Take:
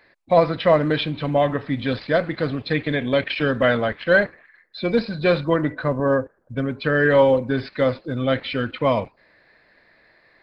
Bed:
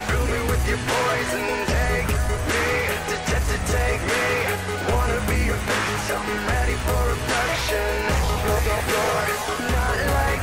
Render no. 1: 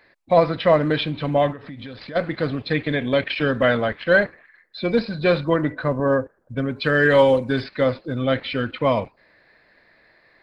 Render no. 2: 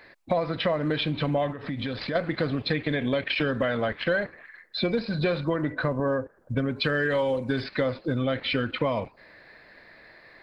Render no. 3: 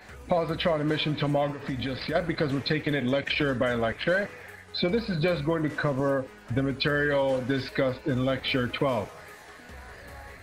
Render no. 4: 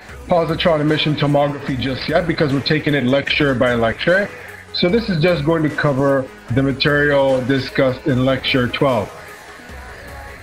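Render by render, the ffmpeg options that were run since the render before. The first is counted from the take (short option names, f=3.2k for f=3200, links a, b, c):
-filter_complex "[0:a]asplit=3[a][b][c];[a]afade=t=out:st=1.51:d=0.02[d];[b]acompressor=threshold=-32dB:ratio=8:attack=3.2:release=140:knee=1:detection=peak,afade=t=in:st=1.51:d=0.02,afade=t=out:st=2.15:d=0.02[e];[c]afade=t=in:st=2.15:d=0.02[f];[d][e][f]amix=inputs=3:normalize=0,asettb=1/sr,asplit=3[g][h][i];[g]atrim=end=6.764[j];[h]atrim=start=6.76:end=7.64,asetpts=PTS-STARTPTS,afade=t=in:d=0.004:c=qsin,afade=t=out:st=0.876:d=0.004:c=qsin,highshelf=f=3.4k:g=10.5[k];[i]atrim=start=7.636[l];[j][k]acrossfade=d=0.004:c1=hsin:c2=qsin[m];[m][l]acrossfade=d=0.004:c1=qsin:c2=hsin"
-filter_complex "[0:a]asplit=2[a][b];[b]alimiter=limit=-13.5dB:level=0:latency=1,volume=-2dB[c];[a][c]amix=inputs=2:normalize=0,acompressor=threshold=-23dB:ratio=6"
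-filter_complex "[1:a]volume=-24dB[a];[0:a][a]amix=inputs=2:normalize=0"
-af "volume=10.5dB,alimiter=limit=-1dB:level=0:latency=1"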